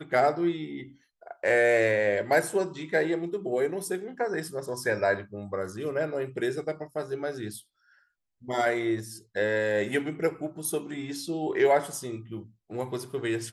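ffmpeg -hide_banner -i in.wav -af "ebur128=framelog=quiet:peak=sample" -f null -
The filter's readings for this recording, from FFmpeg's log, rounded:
Integrated loudness:
  I:         -28.4 LUFS
  Threshold: -38.9 LUFS
Loudness range:
  LRA:         5.8 LU
  Threshold: -49.2 LUFS
  LRA low:   -32.1 LUFS
  LRA high:  -26.3 LUFS
Sample peak:
  Peak:      -11.0 dBFS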